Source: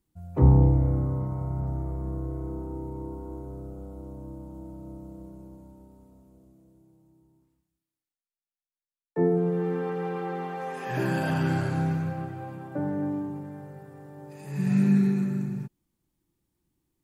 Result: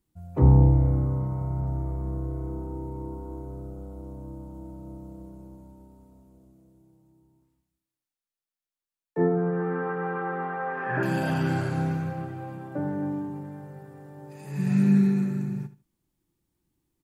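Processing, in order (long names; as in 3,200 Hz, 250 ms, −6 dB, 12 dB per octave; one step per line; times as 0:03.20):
0:09.20–0:11.03: low-pass with resonance 1,500 Hz, resonance Q 3.1
repeating echo 76 ms, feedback 20%, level −14.5 dB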